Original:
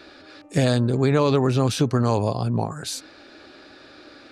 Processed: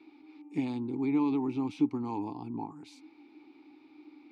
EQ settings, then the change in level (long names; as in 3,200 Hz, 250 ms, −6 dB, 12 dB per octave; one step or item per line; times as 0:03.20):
formant filter u
high-shelf EQ 6,700 Hz +4 dB
0.0 dB